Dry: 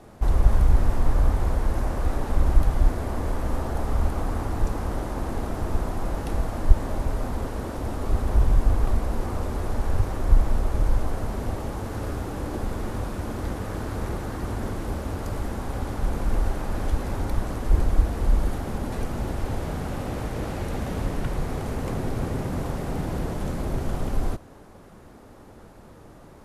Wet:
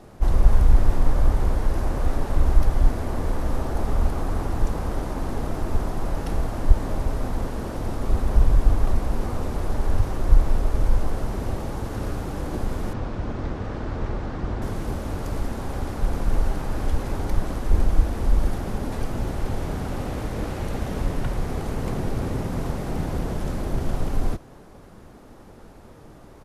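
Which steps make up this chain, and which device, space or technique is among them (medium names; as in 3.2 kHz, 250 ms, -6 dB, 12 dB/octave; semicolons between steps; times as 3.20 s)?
octave pedal (harmony voices -12 st -4 dB); 12.93–14.62 s: distance through air 130 m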